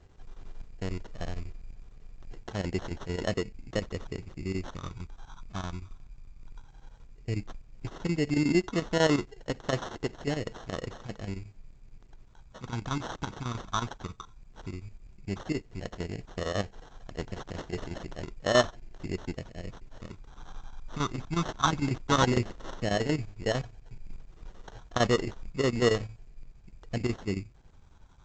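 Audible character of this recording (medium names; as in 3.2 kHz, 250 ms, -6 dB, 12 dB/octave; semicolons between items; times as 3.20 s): phasing stages 4, 0.13 Hz, lowest notch 510–4000 Hz; chopped level 11 Hz, depth 65%, duty 75%; aliases and images of a low sample rate 2.4 kHz, jitter 0%; A-law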